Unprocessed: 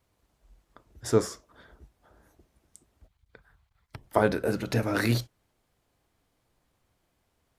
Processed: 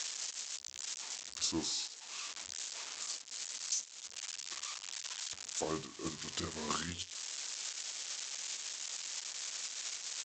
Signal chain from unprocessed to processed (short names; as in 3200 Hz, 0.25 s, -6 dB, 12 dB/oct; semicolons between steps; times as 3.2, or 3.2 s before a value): switching spikes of -18.5 dBFS; HPF 290 Hz 6 dB/oct; gate -24 dBFS, range -14 dB; high shelf 3600 Hz +6.5 dB; compressor 12:1, threshold -37 dBFS, peak gain reduction 22 dB; downsampling 22050 Hz; speed mistake 45 rpm record played at 33 rpm; gain +6.5 dB